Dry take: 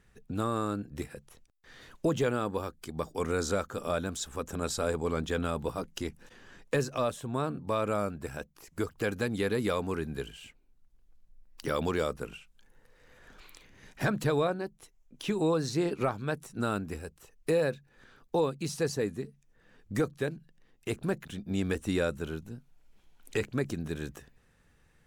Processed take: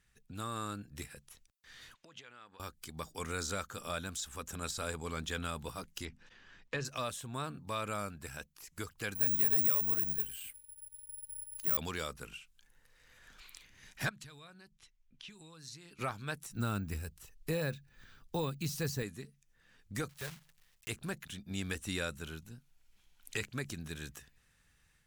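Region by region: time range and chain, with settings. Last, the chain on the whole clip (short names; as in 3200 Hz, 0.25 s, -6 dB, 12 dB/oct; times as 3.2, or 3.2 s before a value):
1.94–2.6 LPF 2700 Hz + compressor 8:1, threshold -42 dBFS + tilt +3.5 dB/oct
6.05–6.85 air absorption 150 m + notches 50/100/150/200/250 Hz
9.15–11.77 careless resampling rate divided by 4×, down filtered, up zero stuff + short-mantissa float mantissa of 2-bit
14.09–15.99 low-pass opened by the level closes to 2900 Hz, open at -26.5 dBFS + bell 560 Hz -8 dB 2.1 oct + compressor 3:1, threshold -48 dBFS
16.51–19.03 low shelf 220 Hz +10.5 dB + careless resampling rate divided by 2×, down none, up hold
20.09–20.89 block floating point 3-bit + bell 290 Hz -14.5 dB 0.65 oct
whole clip: AGC gain up to 4 dB; passive tone stack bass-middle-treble 5-5-5; de-esser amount 90%; gain +4.5 dB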